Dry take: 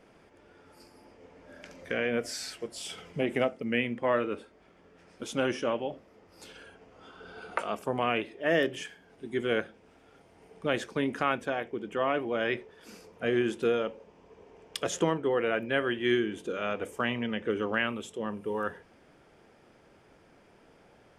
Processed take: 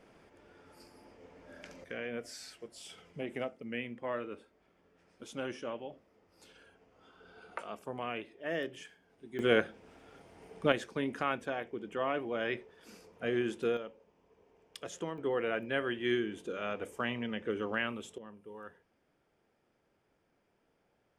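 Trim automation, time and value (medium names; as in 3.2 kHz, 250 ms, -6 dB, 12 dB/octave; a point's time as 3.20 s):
-2 dB
from 1.84 s -10 dB
from 9.39 s +2 dB
from 10.72 s -5 dB
from 13.77 s -12 dB
from 15.18 s -5 dB
from 18.18 s -16 dB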